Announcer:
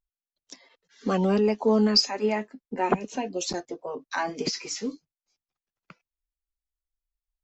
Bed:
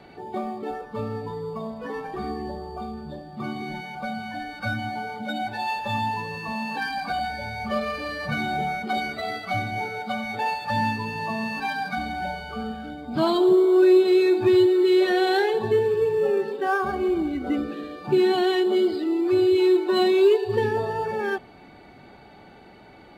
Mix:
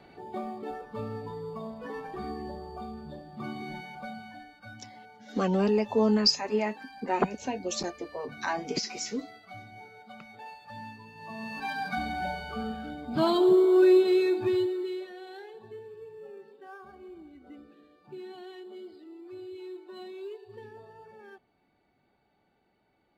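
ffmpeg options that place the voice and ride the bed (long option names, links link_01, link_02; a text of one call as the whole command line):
ffmpeg -i stem1.wav -i stem2.wav -filter_complex "[0:a]adelay=4300,volume=-2.5dB[link_01];[1:a]volume=10dB,afade=type=out:start_time=3.76:duration=0.84:silence=0.223872,afade=type=in:start_time=11.15:duration=0.84:silence=0.158489,afade=type=out:start_time=13.86:duration=1.23:silence=0.0944061[link_02];[link_01][link_02]amix=inputs=2:normalize=0" out.wav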